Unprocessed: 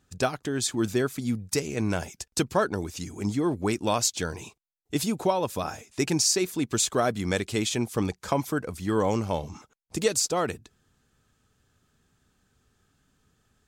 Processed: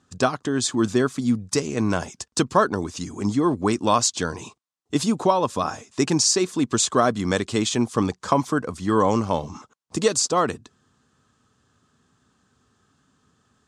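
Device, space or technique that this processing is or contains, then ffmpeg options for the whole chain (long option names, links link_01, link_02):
car door speaker: -af "highpass=90,equalizer=frequency=250:width_type=q:width=4:gain=4,equalizer=frequency=1100:width_type=q:width=4:gain=8,equalizer=frequency=2300:width_type=q:width=4:gain=-5,lowpass=frequency=8800:width=0.5412,lowpass=frequency=8800:width=1.3066,volume=4dB"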